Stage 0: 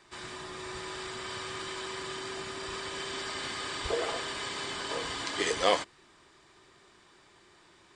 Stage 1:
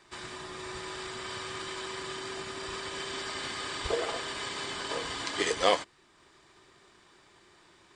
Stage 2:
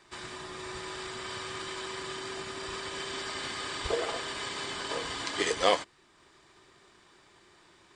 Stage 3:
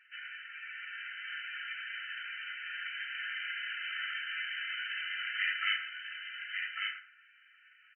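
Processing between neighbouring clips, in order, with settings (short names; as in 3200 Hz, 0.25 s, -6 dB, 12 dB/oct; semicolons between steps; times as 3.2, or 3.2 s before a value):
transient shaper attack +2 dB, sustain -3 dB
nothing audible
brick-wall FIR band-pass 1300–3100 Hz; echo 1.147 s -4.5 dB; FDN reverb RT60 0.46 s, high-frequency decay 0.7×, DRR 1 dB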